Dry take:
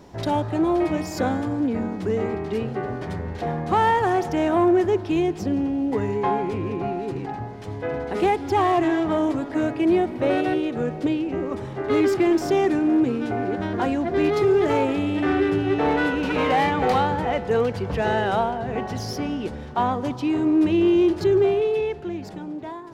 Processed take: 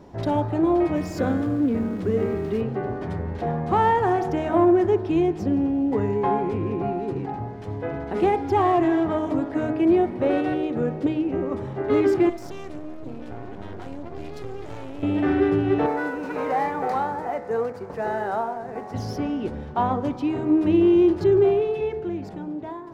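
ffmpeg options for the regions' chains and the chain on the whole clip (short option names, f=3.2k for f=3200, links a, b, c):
-filter_complex "[0:a]asettb=1/sr,asplit=3[a][b][c];[a]atrim=end=0.954[d];[b]atrim=start=0.95:end=2.61,asetpts=PTS-STARTPTS,afade=t=in:d=0.004:c=qsin,afade=t=out:st=1.656:d=0.004:c=qsin,aeval=exprs='val(0)+0.5*0.0126*sgn(val(0))':c=same,equalizer=f=840:t=o:w=0.4:g=-8[e];[c]atrim=start=2.606[f];[d][e]acrossfade=d=0.004:c1=hsin:c2=qsin[g];[g][f]acrossfade=d=0.004:c1=qsin:c2=hsin,asettb=1/sr,asplit=3[h][i][j];[h]atrim=end=12.294[k];[i]atrim=start=12.29:end=15.03,asetpts=PTS-STARTPTS,afade=t=in:d=0.004:c=qsin,afade=t=out:st=2.736:d=0.004:c=qsin,acrossover=split=120|3000[l][m][n];[m]acompressor=threshold=-32dB:ratio=5:attack=3.2:release=140:knee=2.83:detection=peak[o];[l][o][n]amix=inputs=3:normalize=0,aeval=exprs='max(val(0),0)':c=same[p];[j]atrim=start=15.026[q];[k][p]acrossfade=d=0.004:c1=hsin:c2=qsin[r];[r][q]acrossfade=d=0.004:c1=qsin:c2=hsin,asettb=1/sr,asplit=3[s][t][u];[s]atrim=end=15.864[v];[t]atrim=start=15.86:end=18.94,asetpts=PTS-STARTPTS,afade=t=in:d=0.004:c=qsin,afade=t=out:st=3.076:d=0.004:c=qsin,highpass=f=540:p=1,aeval=exprs='sgn(val(0))*max(abs(val(0))-0.00596,0)':c=same,equalizer=f=3.1k:w=1.8:g=-13[w];[u]atrim=start=18.936[x];[v][w]acrossfade=d=0.004:c1=hsin:c2=qsin[y];[y][x]acrossfade=d=0.004:c1=qsin:c2=hsin,highshelf=f=2.1k:g=-10.5,bandreject=f=62.34:t=h:w=4,bandreject=f=124.68:t=h:w=4,bandreject=f=187.02:t=h:w=4,bandreject=f=249.36:t=h:w=4,bandreject=f=311.7:t=h:w=4,bandreject=f=374.04:t=h:w=4,bandreject=f=436.38:t=h:w=4,bandreject=f=498.72:t=h:w=4,bandreject=f=561.06:t=h:w=4,bandreject=f=623.4:t=h:w=4,bandreject=f=685.74:t=h:w=4,bandreject=f=748.08:t=h:w=4,bandreject=f=810.42:t=h:w=4,bandreject=f=872.76:t=h:w=4,bandreject=f=935.1:t=h:w=4,bandreject=f=997.44:t=h:w=4,bandreject=f=1.05978k:t=h:w=4,bandreject=f=1.12212k:t=h:w=4,bandreject=f=1.18446k:t=h:w=4,bandreject=f=1.2468k:t=h:w=4,bandreject=f=1.30914k:t=h:w=4,bandreject=f=1.37148k:t=h:w=4,bandreject=f=1.43382k:t=h:w=4,bandreject=f=1.49616k:t=h:w=4,bandreject=f=1.5585k:t=h:w=4,bandreject=f=1.62084k:t=h:w=4,bandreject=f=1.68318k:t=h:w=4,bandreject=f=1.74552k:t=h:w=4,bandreject=f=1.80786k:t=h:w=4,bandreject=f=1.8702k:t=h:w=4,bandreject=f=1.93254k:t=h:w=4,bandreject=f=1.99488k:t=h:w=4,bandreject=f=2.05722k:t=h:w=4,bandreject=f=2.11956k:t=h:w=4,bandreject=f=2.1819k:t=h:w=4,bandreject=f=2.24424k:t=h:w=4,bandreject=f=2.30658k:t=h:w=4,bandreject=f=2.36892k:t=h:w=4,bandreject=f=2.43126k:t=h:w=4,volume=1.5dB"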